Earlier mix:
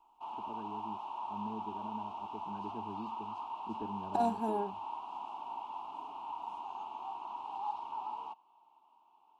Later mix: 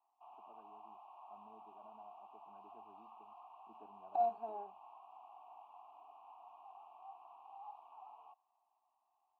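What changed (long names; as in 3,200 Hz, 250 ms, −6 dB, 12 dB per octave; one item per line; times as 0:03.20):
background −4.5 dB
master: add formant filter a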